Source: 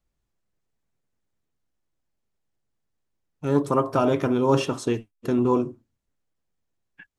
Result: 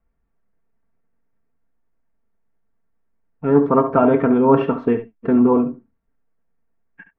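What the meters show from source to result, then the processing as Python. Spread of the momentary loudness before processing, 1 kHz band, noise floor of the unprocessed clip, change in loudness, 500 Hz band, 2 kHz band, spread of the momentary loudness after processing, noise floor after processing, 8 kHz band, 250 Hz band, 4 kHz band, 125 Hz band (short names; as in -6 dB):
8 LU, +6.0 dB, -79 dBFS, +6.5 dB, +6.5 dB, +3.5 dB, 8 LU, -70 dBFS, under -35 dB, +8.0 dB, n/a, +1.5 dB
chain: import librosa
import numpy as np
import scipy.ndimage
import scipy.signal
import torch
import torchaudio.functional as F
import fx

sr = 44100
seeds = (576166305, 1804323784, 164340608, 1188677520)

y = scipy.signal.sosfilt(scipy.signal.butter(4, 2000.0, 'lowpass', fs=sr, output='sos'), x)
y = y + 0.55 * np.pad(y, (int(4.4 * sr / 1000.0), 0))[:len(y)]
y = y + 10.0 ** (-12.0 / 20.0) * np.pad(y, (int(70 * sr / 1000.0), 0))[:len(y)]
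y = F.gain(torch.from_numpy(y), 5.5).numpy()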